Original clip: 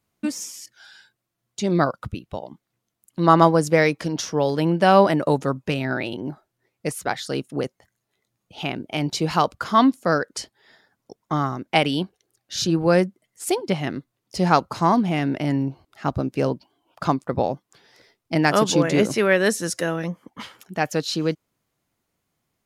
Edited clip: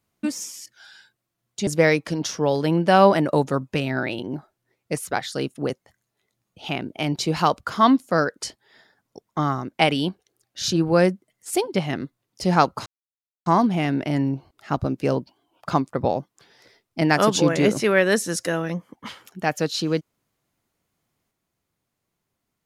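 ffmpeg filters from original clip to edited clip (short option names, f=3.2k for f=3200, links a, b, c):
-filter_complex "[0:a]asplit=3[a][b][c];[a]atrim=end=1.672[d];[b]atrim=start=3.608:end=14.8,asetpts=PTS-STARTPTS,afade=t=out:st=11.188:d=0.004:c=hsin,apad=pad_dur=0.6[e];[c]atrim=start=14.8,asetpts=PTS-STARTPTS,afade=t=in:d=0.004:c=hsin[f];[e][f]concat=n=2:v=0:a=1[g];[d][g]acrossfade=d=0.004:c1=hsin:c2=hsin"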